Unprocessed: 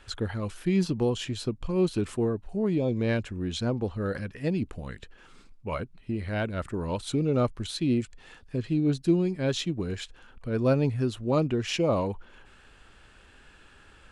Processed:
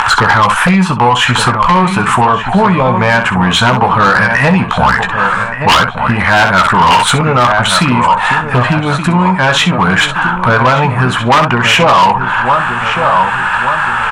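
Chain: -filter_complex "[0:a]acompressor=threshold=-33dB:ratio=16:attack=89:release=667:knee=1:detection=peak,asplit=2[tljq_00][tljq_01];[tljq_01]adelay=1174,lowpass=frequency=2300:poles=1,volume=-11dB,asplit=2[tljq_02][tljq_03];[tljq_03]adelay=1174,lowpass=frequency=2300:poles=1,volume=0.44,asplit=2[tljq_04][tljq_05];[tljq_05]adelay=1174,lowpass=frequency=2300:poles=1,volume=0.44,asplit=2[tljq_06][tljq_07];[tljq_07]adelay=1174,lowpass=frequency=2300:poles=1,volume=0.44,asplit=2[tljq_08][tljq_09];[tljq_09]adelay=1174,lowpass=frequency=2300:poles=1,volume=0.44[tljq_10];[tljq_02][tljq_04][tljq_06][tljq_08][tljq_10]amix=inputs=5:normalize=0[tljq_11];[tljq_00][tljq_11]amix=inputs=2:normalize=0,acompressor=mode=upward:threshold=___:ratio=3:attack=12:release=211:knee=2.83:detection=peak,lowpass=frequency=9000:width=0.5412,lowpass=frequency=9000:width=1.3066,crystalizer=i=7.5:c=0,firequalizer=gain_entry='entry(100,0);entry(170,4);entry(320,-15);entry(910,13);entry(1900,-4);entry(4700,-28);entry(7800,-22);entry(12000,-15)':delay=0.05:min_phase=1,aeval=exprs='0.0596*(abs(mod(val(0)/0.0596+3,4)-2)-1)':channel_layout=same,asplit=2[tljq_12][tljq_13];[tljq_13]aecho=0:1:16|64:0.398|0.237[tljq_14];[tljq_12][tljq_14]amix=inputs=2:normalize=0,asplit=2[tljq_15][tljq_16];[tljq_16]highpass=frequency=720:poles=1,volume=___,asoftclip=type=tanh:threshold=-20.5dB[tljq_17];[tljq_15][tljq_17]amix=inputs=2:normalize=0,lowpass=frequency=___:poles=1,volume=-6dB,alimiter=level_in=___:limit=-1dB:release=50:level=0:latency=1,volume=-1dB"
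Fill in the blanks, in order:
-46dB, 17dB, 6300, 24.5dB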